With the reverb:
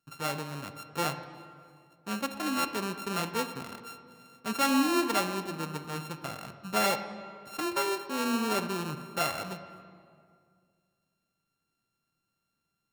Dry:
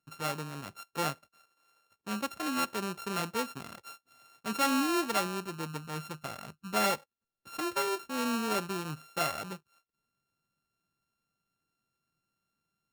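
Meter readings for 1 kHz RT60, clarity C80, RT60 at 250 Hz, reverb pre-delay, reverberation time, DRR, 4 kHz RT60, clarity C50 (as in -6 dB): 2.0 s, 11.0 dB, 2.5 s, 22 ms, 2.1 s, 9.0 dB, 1.4 s, 10.0 dB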